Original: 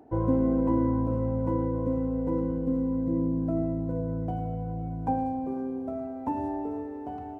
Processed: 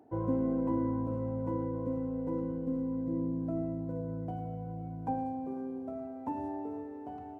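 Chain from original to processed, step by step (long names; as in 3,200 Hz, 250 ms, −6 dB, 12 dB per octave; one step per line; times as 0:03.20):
high-pass filter 82 Hz
level −6 dB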